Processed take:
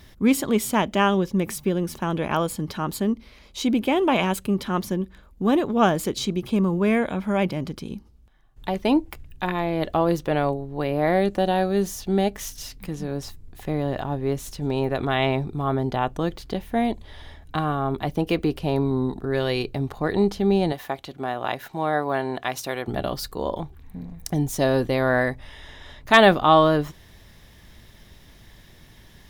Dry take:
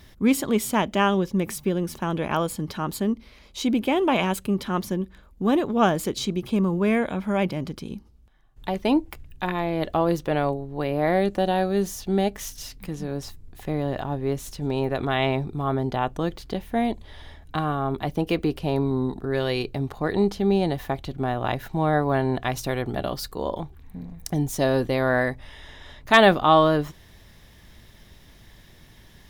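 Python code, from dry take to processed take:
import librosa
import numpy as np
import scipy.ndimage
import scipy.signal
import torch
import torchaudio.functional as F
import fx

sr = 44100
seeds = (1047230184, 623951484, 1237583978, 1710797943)

y = fx.highpass(x, sr, hz=460.0, slope=6, at=(20.72, 22.88))
y = y * 10.0 ** (1.0 / 20.0)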